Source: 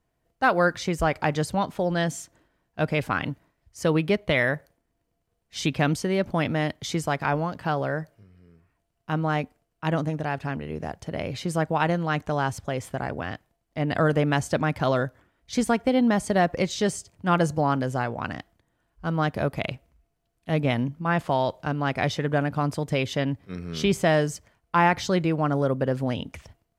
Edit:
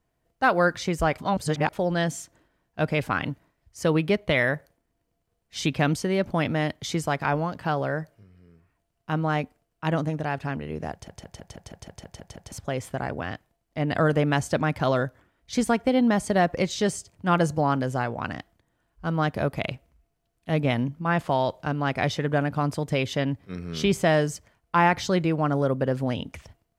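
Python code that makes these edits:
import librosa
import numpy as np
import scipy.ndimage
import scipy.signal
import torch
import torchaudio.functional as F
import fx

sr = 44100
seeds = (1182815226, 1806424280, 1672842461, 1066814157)

y = fx.edit(x, sr, fx.reverse_span(start_s=1.18, length_s=0.55),
    fx.stutter_over(start_s=10.92, slice_s=0.16, count=10), tone=tone)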